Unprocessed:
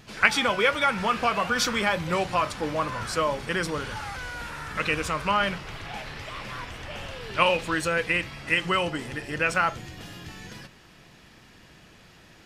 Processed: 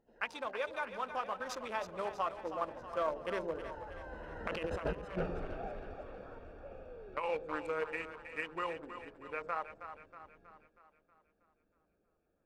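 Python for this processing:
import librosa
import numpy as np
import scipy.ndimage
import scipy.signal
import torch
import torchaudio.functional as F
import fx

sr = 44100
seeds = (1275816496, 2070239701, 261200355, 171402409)

y = fx.wiener(x, sr, points=41)
y = fx.doppler_pass(y, sr, speed_mps=22, closest_m=3.6, pass_at_s=5.01)
y = fx.graphic_eq(y, sr, hz=(125, 500, 1000), db=(-12, 7, 9))
y = fx.over_compress(y, sr, threshold_db=-40.0, ratio=-1.0)
y = fx.echo_split(y, sr, split_hz=500.0, low_ms=113, high_ms=319, feedback_pct=52, wet_db=-10)
y = y * 10.0 ** (1.0 / 20.0)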